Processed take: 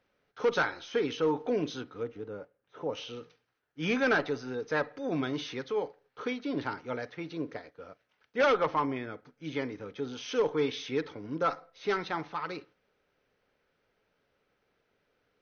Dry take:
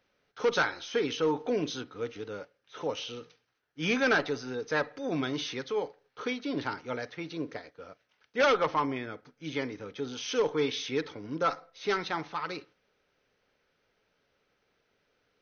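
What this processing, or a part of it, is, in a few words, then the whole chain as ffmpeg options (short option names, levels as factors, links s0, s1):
behind a face mask: -filter_complex "[0:a]highshelf=f=3300:g=-8,asplit=3[s0][s1][s2];[s0]afade=t=out:st=2.02:d=0.02[s3];[s1]equalizer=f=5000:t=o:w=3:g=-12.5,afade=t=in:st=2.02:d=0.02,afade=t=out:st=2.92:d=0.02[s4];[s2]afade=t=in:st=2.92:d=0.02[s5];[s3][s4][s5]amix=inputs=3:normalize=0"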